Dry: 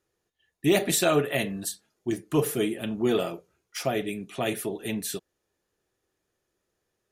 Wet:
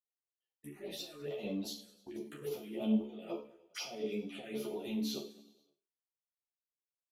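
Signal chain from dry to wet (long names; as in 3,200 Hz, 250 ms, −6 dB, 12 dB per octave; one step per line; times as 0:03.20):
meter weighting curve A
downward expander −57 dBFS
tilt shelving filter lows +6.5 dB, about 1,100 Hz
mains-hum notches 50/100/150/200/250/300/350/400/450 Hz
compressor whose output falls as the input rises −36 dBFS, ratio −1
tuned comb filter 72 Hz, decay 0.39 s, harmonics all, mix 90%
phaser swept by the level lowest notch 250 Hz, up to 1,700 Hz, full sweep at −40.5 dBFS
repeating echo 101 ms, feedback 60%, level −18 dB
string-ensemble chorus
level +6 dB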